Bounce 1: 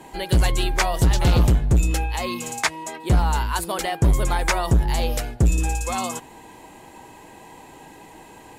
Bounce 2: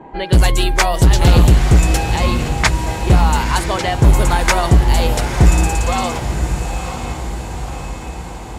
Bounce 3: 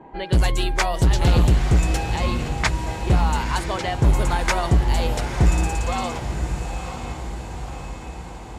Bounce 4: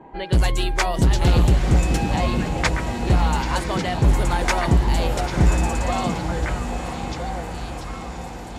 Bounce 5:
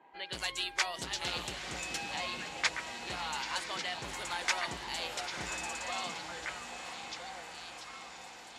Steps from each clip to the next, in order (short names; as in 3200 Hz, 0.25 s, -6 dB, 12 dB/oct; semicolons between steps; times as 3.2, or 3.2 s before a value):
low-pass opened by the level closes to 1100 Hz, open at -17.5 dBFS; diffused feedback echo 0.958 s, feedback 59%, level -8 dB; gain +6.5 dB
high shelf 11000 Hz -9.5 dB; gain -6.5 dB
delay with a stepping band-pass 0.659 s, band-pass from 230 Hz, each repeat 1.4 oct, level 0 dB
band-pass 3900 Hz, Q 0.65; gain -4.5 dB